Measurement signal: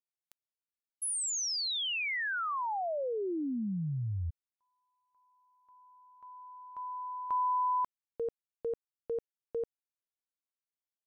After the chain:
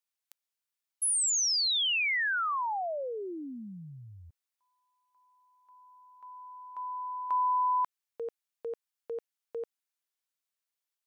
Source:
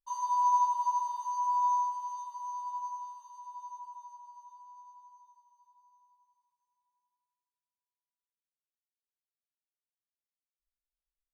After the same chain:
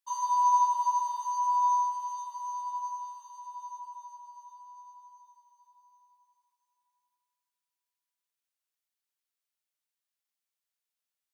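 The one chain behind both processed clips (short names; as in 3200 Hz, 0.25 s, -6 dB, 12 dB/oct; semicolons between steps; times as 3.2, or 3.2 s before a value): HPF 1100 Hz 6 dB/oct; gain +6 dB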